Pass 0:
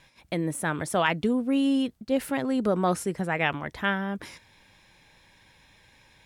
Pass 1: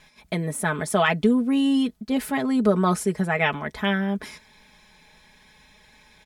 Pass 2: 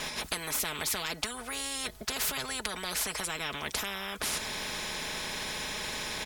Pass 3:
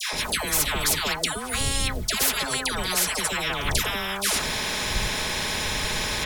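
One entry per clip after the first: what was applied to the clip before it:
notch 2800 Hz, Q 23; comb 4.7 ms, depth 75%; gain +2 dB
compressor 2:1, threshold -36 dBFS, peak gain reduction 12 dB; spectral compressor 10:1; gain +8.5 dB
wind noise 81 Hz -43 dBFS; dispersion lows, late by 0.132 s, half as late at 1000 Hz; gain +8.5 dB

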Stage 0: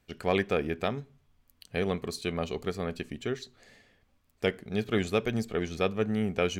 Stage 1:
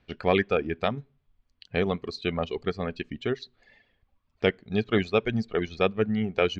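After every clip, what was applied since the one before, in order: LPF 4400 Hz 24 dB/oct; reverb removal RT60 1.3 s; gain +4.5 dB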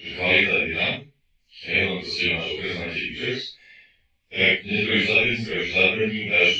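phase scrambler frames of 0.2 s; resonant high shelf 1700 Hz +9.5 dB, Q 3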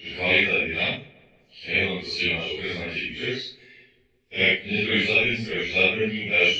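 darkening echo 0.172 s, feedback 61%, low-pass 2500 Hz, level -23 dB; gain -1.5 dB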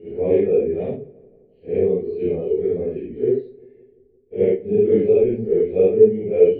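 synth low-pass 430 Hz, resonance Q 4.9; gain +2 dB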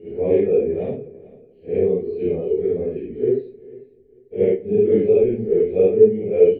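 feedback echo 0.445 s, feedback 25%, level -21 dB

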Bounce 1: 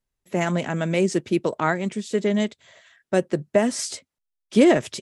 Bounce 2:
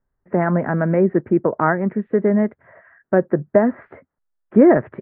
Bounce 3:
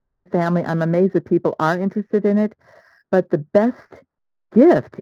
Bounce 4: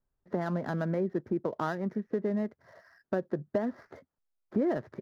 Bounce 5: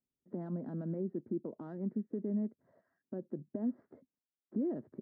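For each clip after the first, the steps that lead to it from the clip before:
steep low-pass 1800 Hz 48 dB/oct; in parallel at -2 dB: compressor, threshold -28 dBFS, peak gain reduction 16 dB; on the sum: gain +3 dB
median filter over 15 samples
compressor 2.5:1, threshold -23 dBFS, peak gain reduction 11 dB; gain -7 dB
limiter -23.5 dBFS, peak gain reduction 7 dB; band-pass 250 Hz, Q 2

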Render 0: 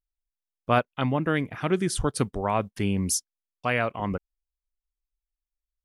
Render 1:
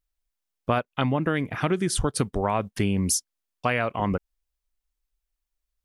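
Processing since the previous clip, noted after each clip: compressor 5:1, threshold -27 dBFS, peak gain reduction 10.5 dB; gain +6.5 dB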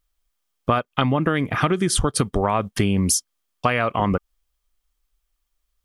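small resonant body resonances 1200/3200 Hz, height 8 dB, ringing for 30 ms; compressor 3:1, threshold -25 dBFS, peak gain reduction 7 dB; gain +8 dB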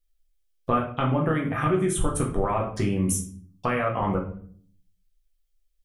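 envelope phaser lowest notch 170 Hz, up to 4700 Hz, full sweep at -22.5 dBFS; shoebox room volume 59 m³, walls mixed, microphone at 0.79 m; gain -8 dB

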